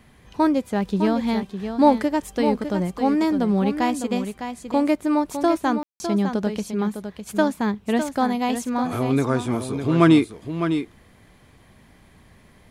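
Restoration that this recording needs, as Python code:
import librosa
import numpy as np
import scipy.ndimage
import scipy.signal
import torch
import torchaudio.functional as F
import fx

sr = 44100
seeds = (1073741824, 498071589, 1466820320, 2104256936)

y = fx.fix_ambience(x, sr, seeds[0], print_start_s=11.03, print_end_s=11.53, start_s=5.83, end_s=6.0)
y = fx.fix_echo_inverse(y, sr, delay_ms=606, level_db=-8.5)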